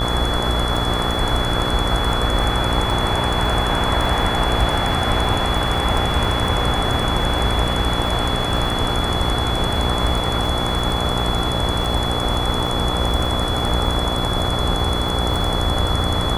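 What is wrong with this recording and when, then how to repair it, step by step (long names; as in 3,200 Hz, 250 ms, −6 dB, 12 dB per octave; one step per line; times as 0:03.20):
mains buzz 60 Hz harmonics 23 −24 dBFS
surface crackle 45 per second −25 dBFS
whistle 3,400 Hz −25 dBFS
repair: click removal
notch filter 3,400 Hz, Q 30
hum removal 60 Hz, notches 23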